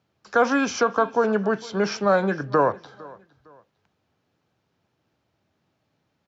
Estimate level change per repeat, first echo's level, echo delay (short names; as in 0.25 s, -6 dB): -10.0 dB, -22.0 dB, 0.457 s